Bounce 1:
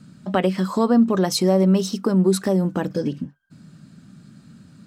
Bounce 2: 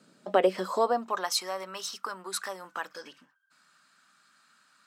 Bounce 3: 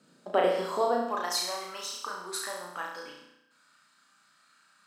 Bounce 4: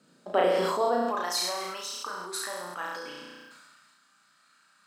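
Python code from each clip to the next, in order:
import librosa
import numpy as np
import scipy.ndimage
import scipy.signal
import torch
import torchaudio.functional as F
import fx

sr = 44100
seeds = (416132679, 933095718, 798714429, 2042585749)

y1 = fx.filter_sweep_highpass(x, sr, from_hz=460.0, to_hz=1200.0, start_s=0.63, end_s=1.35, q=1.9)
y1 = y1 * librosa.db_to_amplitude(-5.0)
y2 = fx.room_flutter(y1, sr, wall_m=5.8, rt60_s=0.81)
y2 = y2 * librosa.db_to_amplitude(-3.5)
y3 = fx.sustainer(y2, sr, db_per_s=26.0)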